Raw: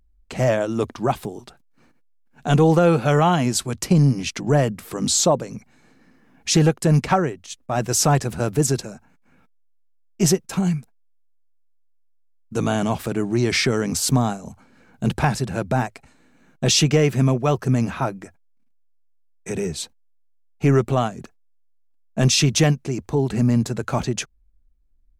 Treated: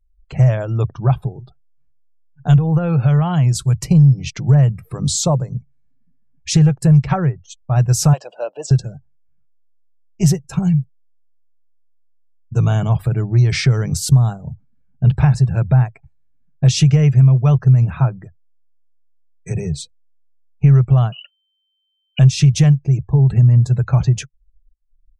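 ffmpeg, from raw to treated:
-filter_complex "[0:a]asettb=1/sr,asplit=3[s0][s1][s2];[s0]atrim=end=2.574[s3];[s1]atrim=start=2.57:end=3.73,asetpts=PTS-STARTPTS,afade=t=in:d=0.004:c=qsin,afade=t=out:st=1.156:d=0.004:c=qsin,acompressor=threshold=0.126:ratio=3:attack=3.2:release=140:knee=1:detection=peak[s4];[s2]atrim=start=3.726[s5];[s3][s4]acrossfade=d=0.004:c1=hsin:c2=qsin[s6];[s6][s5]acrossfade=d=0.004:c1=qsin:c2=hsin,asettb=1/sr,asplit=3[s7][s8][s9];[s7]atrim=end=8.134[s10];[s8]atrim=start=8.13:end=8.71,asetpts=PTS-STARTPTS,afade=t=in:d=0.004:c=qsin,afade=t=out:st=0.576:d=0.004:c=qsin,highpass=f=400:w=0.5412,highpass=f=400:w=1.3066,equalizer=f=400:t=q:w=4:g=-9,equalizer=f=580:t=q:w=4:g=9,equalizer=f=1300:t=q:w=4:g=-6,equalizer=f=2000:t=q:w=4:g=-10,equalizer=f=2900:t=q:w=4:g=5,equalizer=f=6400:t=q:w=4:g=-6,lowpass=f=6900:w=0.5412,lowpass=f=6900:w=1.3066[s11];[s9]atrim=start=8.706[s12];[s10][s11]acrossfade=d=0.004:c1=hsin:c2=qsin[s13];[s13][s12]acrossfade=d=0.004:c1=qsin:c2=hsin,asettb=1/sr,asplit=3[s14][s15][s16];[s14]atrim=end=21.124[s17];[s15]atrim=start=21.12:end=22.19,asetpts=PTS-STARTPTS,afade=t=in:d=0.004:c=qsin,afade=t=out:st=1.066:d=0.004:c=qsin,lowpass=f=2600:t=q:w=0.5098,lowpass=f=2600:t=q:w=0.6013,lowpass=f=2600:t=q:w=0.9,lowpass=f=2600:t=q:w=2.563,afreqshift=-3100[s18];[s16]atrim=start=22.186[s19];[s17][s18]acrossfade=d=0.004:c1=hsin:c2=qsin[s20];[s20][s19]acrossfade=d=0.004:c1=qsin:c2=hsin,afftdn=nr=32:nf=-38,lowshelf=f=180:t=q:w=3:g=10,acompressor=threshold=0.398:ratio=3,volume=0.891"

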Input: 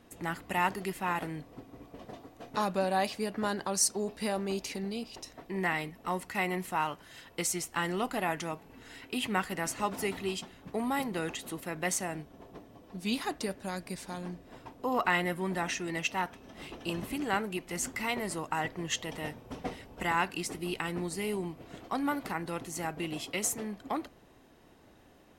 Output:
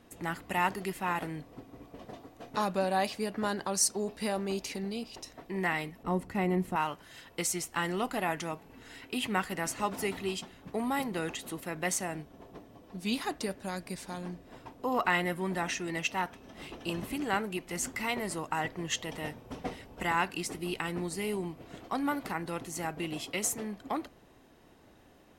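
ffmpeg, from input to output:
-filter_complex "[0:a]asettb=1/sr,asplit=3[s0][s1][s2];[s0]atrim=end=6.034[s3];[s1]atrim=start=6.03:end=6.76,asetpts=PTS-STARTPTS,afade=t=in:d=0.004:c=qsin,afade=t=out:st=0.726:d=0.004:c=qsin,tiltshelf=f=710:g=8.5[s4];[s2]atrim=start=6.756[s5];[s3][s4]acrossfade=d=0.004:c1=hsin:c2=qsin[s6];[s6][s5]acrossfade=d=0.004:c1=qsin:c2=hsin"

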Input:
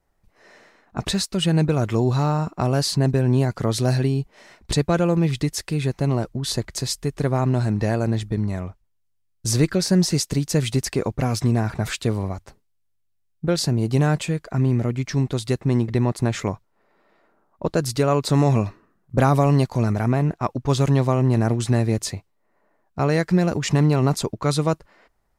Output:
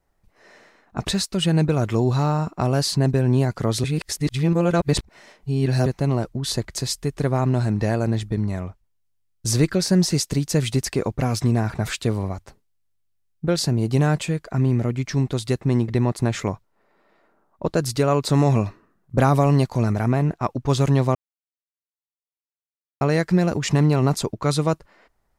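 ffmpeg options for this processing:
-filter_complex "[0:a]asplit=5[s0][s1][s2][s3][s4];[s0]atrim=end=3.842[s5];[s1]atrim=start=3.838:end=5.862,asetpts=PTS-STARTPTS,areverse[s6];[s2]atrim=start=5.858:end=21.15,asetpts=PTS-STARTPTS,afade=t=out:st=15.288:d=0.004:c=hsin[s7];[s3]atrim=start=21.15:end=23.01,asetpts=PTS-STARTPTS,volume=0[s8];[s4]atrim=start=23.01,asetpts=PTS-STARTPTS,afade=t=in:d=0.004:c=hsin[s9];[s5][s6]acrossfade=d=0.004:c1=hsin:c2=hsin[s10];[s7][s8][s9]concat=n=3:v=0:a=1[s11];[s10][s11]acrossfade=d=0.004:c1=hsin:c2=hsin"

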